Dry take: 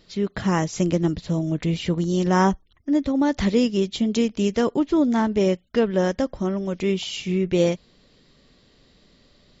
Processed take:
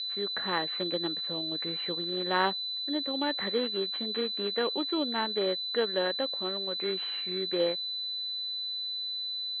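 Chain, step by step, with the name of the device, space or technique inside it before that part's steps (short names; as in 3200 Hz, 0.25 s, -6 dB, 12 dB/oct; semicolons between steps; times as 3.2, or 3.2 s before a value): toy sound module (decimation joined by straight lines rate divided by 4×; pulse-width modulation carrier 4000 Hz; speaker cabinet 550–4200 Hz, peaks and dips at 670 Hz -6 dB, 980 Hz -4 dB, 1800 Hz +5 dB, 3100 Hz +4 dB); gain -2 dB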